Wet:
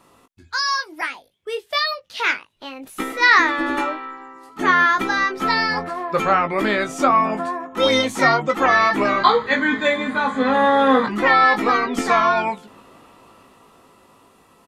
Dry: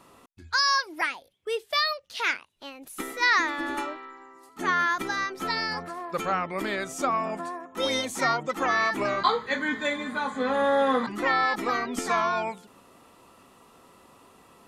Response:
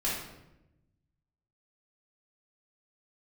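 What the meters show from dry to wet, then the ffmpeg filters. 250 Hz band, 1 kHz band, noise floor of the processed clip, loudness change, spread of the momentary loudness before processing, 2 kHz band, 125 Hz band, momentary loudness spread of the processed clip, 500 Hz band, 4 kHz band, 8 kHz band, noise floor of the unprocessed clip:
+9.5 dB, +9.0 dB, −55 dBFS, +8.5 dB, 12 LU, +8.5 dB, +8.5 dB, 13 LU, +8.0 dB, +5.0 dB, +2.5 dB, −57 dBFS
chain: -filter_complex "[0:a]asplit=2[link_01][link_02];[link_02]adelay=19,volume=-7dB[link_03];[link_01][link_03]amix=inputs=2:normalize=0,acrossover=split=4400[link_04][link_05];[link_04]dynaudnorm=framelen=480:gausssize=9:maxgain=11.5dB[link_06];[link_06][link_05]amix=inputs=2:normalize=0"

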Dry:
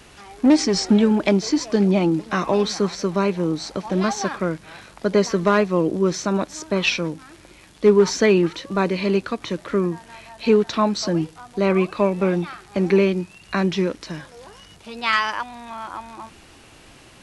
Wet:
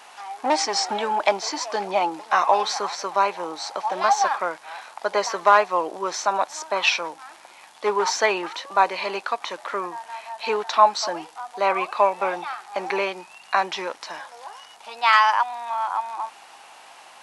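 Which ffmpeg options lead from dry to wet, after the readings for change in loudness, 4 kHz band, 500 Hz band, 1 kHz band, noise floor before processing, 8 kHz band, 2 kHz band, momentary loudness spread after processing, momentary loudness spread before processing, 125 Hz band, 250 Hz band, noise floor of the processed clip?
−2.0 dB, +0.5 dB, −5.5 dB, +8.0 dB, −48 dBFS, 0.0 dB, +2.0 dB, 17 LU, 13 LU, below −20 dB, −18.0 dB, −48 dBFS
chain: -af "aeval=exprs='val(0)+0.00631*(sin(2*PI*50*n/s)+sin(2*PI*2*50*n/s)/2+sin(2*PI*3*50*n/s)/3+sin(2*PI*4*50*n/s)/4+sin(2*PI*5*50*n/s)/5)':channel_layout=same,highpass=frequency=820:width_type=q:width=3.4"

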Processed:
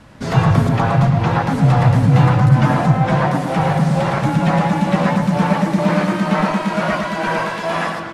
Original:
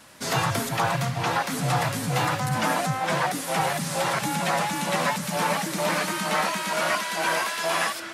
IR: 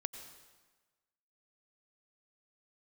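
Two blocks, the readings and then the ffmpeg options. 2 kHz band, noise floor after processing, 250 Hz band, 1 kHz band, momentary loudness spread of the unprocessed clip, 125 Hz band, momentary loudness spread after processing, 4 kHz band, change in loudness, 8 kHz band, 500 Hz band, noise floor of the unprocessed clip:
+3.0 dB, −25 dBFS, +15.0 dB, +6.0 dB, 1 LU, +16.5 dB, 7 LU, −1.5 dB, +9.0 dB, −8.0 dB, +8.0 dB, −33 dBFS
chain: -filter_complex "[0:a]aemphasis=mode=reproduction:type=riaa,asplit=2[link_01][link_02];[link_02]adelay=110,lowpass=frequency=1900:poles=1,volume=-4dB,asplit=2[link_03][link_04];[link_04]adelay=110,lowpass=frequency=1900:poles=1,volume=0.52,asplit=2[link_05][link_06];[link_06]adelay=110,lowpass=frequency=1900:poles=1,volume=0.52,asplit=2[link_07][link_08];[link_08]adelay=110,lowpass=frequency=1900:poles=1,volume=0.52,asplit=2[link_09][link_10];[link_10]adelay=110,lowpass=frequency=1900:poles=1,volume=0.52,asplit=2[link_11][link_12];[link_12]adelay=110,lowpass=frequency=1900:poles=1,volume=0.52,asplit=2[link_13][link_14];[link_14]adelay=110,lowpass=frequency=1900:poles=1,volume=0.52[link_15];[link_03][link_05][link_07][link_09][link_11][link_13][link_15]amix=inputs=7:normalize=0[link_16];[link_01][link_16]amix=inputs=2:normalize=0,volume=4dB"

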